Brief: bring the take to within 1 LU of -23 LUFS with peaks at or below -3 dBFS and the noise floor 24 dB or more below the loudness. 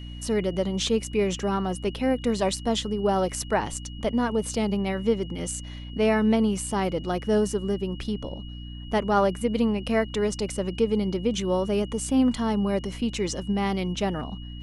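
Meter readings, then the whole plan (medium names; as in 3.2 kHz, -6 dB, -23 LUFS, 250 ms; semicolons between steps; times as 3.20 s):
hum 60 Hz; highest harmonic 300 Hz; hum level -36 dBFS; steady tone 2.9 kHz; tone level -46 dBFS; loudness -26.0 LUFS; peak level -10.5 dBFS; loudness target -23.0 LUFS
-> de-hum 60 Hz, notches 5; band-stop 2.9 kHz, Q 30; trim +3 dB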